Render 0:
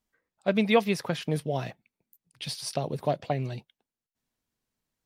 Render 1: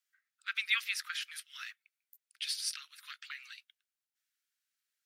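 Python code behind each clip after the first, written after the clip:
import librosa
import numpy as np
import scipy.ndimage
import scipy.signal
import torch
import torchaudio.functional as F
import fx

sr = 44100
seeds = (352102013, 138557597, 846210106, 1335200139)

y = scipy.signal.sosfilt(scipy.signal.butter(12, 1300.0, 'highpass', fs=sr, output='sos'), x)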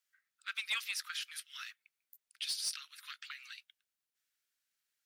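y = fx.dynamic_eq(x, sr, hz=1900.0, q=1.4, threshold_db=-49.0, ratio=4.0, max_db=-6)
y = 10.0 ** (-27.5 / 20.0) * np.tanh(y / 10.0 ** (-27.5 / 20.0))
y = y * librosa.db_to_amplitude(1.0)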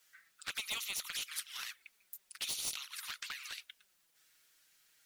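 y = fx.env_flanger(x, sr, rest_ms=6.4, full_db=-37.5)
y = fx.spectral_comp(y, sr, ratio=2.0)
y = y * librosa.db_to_amplitude(2.5)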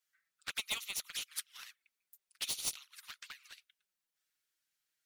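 y = fx.upward_expand(x, sr, threshold_db=-49.0, expansion=2.5)
y = y * librosa.db_to_amplitude(3.5)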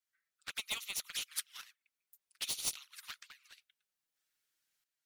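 y = fx.tremolo_shape(x, sr, shape='saw_up', hz=0.62, depth_pct=70)
y = y * librosa.db_to_amplitude(3.0)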